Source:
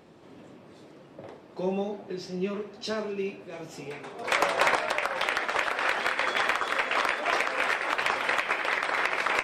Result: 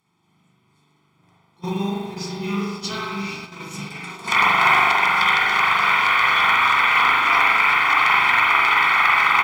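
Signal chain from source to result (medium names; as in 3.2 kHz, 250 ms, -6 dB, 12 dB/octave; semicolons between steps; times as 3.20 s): RIAA curve recording; low-pass that closes with the level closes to 2.9 kHz, closed at -21 dBFS; spring tank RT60 1.3 s, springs 40 ms, chirp 55 ms, DRR -6 dB; in parallel at -10 dB: short-mantissa float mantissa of 2-bit; on the sum: resonant low shelf 200 Hz +10 dB, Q 1.5; comb 0.9 ms, depth 92%; on a send: echo that smears into a reverb 495 ms, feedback 64%, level -8.5 dB; on the sum: gate -28 dBFS, range -19 dB; trim -2.5 dB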